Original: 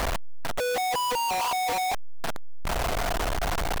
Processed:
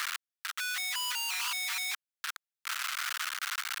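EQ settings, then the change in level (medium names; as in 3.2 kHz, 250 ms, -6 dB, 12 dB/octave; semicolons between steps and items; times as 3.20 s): Chebyshev high-pass 1.3 kHz, order 4; 0.0 dB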